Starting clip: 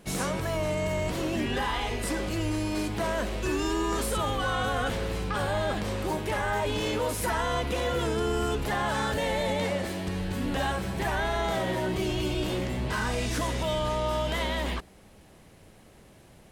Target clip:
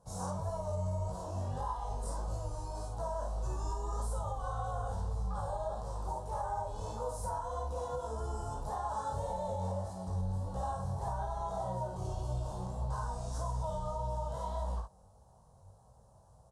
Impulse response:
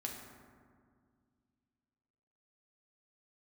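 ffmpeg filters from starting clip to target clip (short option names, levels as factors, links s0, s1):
-af "highpass=f=45:p=1,equalizer=f=4500:w=0.44:g=-11.5,aecho=1:1:32|54:0.422|0.562,flanger=delay=16.5:depth=5.5:speed=1.7,firequalizer=gain_entry='entry(110,0);entry(180,-11);entry(320,-24);entry(490,-6);entry(930,2);entry(2100,-29);entry(3900,-7);entry(5600,1);entry(9500,-2);entry(14000,-24)':delay=0.05:min_phase=1,alimiter=level_in=1.41:limit=0.0631:level=0:latency=1:release=285,volume=0.708"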